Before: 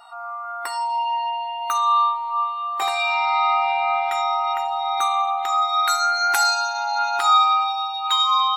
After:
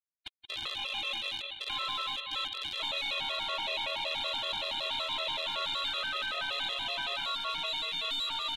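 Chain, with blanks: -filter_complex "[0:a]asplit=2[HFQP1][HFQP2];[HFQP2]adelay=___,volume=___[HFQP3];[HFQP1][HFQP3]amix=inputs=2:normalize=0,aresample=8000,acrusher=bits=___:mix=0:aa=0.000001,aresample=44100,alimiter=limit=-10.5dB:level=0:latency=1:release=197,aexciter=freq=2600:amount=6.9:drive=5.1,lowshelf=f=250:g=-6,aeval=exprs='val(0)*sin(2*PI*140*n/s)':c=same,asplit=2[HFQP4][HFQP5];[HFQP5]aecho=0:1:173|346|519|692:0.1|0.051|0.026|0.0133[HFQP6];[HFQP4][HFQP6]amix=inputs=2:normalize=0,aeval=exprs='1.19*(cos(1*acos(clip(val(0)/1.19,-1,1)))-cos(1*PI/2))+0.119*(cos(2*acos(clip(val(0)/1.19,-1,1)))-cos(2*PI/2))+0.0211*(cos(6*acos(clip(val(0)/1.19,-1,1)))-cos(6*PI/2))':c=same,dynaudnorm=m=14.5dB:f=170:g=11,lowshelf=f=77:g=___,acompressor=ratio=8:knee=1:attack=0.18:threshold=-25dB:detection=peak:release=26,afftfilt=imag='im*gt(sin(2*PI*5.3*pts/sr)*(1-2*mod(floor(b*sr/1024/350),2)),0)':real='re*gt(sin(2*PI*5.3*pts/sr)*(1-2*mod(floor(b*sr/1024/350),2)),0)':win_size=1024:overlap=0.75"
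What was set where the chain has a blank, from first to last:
37, -9dB, 3, 5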